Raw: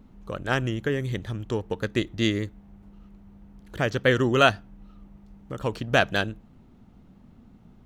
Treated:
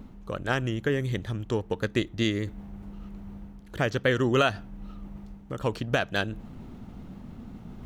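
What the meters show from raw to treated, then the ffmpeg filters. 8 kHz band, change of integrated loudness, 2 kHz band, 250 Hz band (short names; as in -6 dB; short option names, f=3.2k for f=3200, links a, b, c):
-2.5 dB, -2.5 dB, -3.5 dB, -1.5 dB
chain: -af "alimiter=limit=-11.5dB:level=0:latency=1:release=321,areverse,acompressor=mode=upward:threshold=-31dB:ratio=2.5,areverse"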